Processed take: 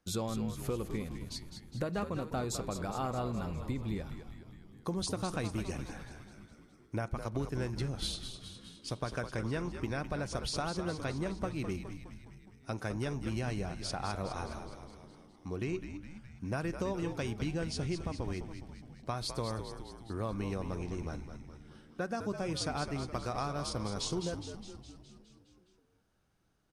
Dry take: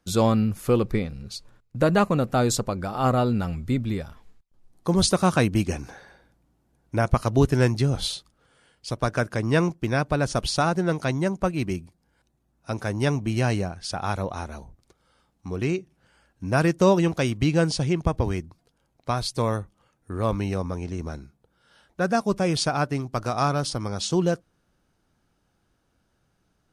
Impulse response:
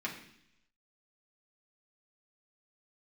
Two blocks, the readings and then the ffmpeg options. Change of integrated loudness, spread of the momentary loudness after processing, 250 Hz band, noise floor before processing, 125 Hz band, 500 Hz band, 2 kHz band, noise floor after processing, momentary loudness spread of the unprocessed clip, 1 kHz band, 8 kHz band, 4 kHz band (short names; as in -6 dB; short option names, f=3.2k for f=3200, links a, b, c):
-13.0 dB, 15 LU, -12.5 dB, -71 dBFS, -12.5 dB, -13.0 dB, -12.5 dB, -63 dBFS, 14 LU, -12.5 dB, -10.5 dB, -10.0 dB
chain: -filter_complex "[0:a]acompressor=threshold=-26dB:ratio=6,asplit=9[a][b][c][d][e][f][g][h][i];[b]adelay=207,afreqshift=-78,volume=-8.5dB[j];[c]adelay=414,afreqshift=-156,volume=-12.8dB[k];[d]adelay=621,afreqshift=-234,volume=-17.1dB[l];[e]adelay=828,afreqshift=-312,volume=-21.4dB[m];[f]adelay=1035,afreqshift=-390,volume=-25.7dB[n];[g]adelay=1242,afreqshift=-468,volume=-30dB[o];[h]adelay=1449,afreqshift=-546,volume=-34.3dB[p];[i]adelay=1656,afreqshift=-624,volume=-38.6dB[q];[a][j][k][l][m][n][o][p][q]amix=inputs=9:normalize=0,asplit=2[r][s];[1:a]atrim=start_sample=2205[t];[s][t]afir=irnorm=-1:irlink=0,volume=-17dB[u];[r][u]amix=inputs=2:normalize=0,volume=-7dB"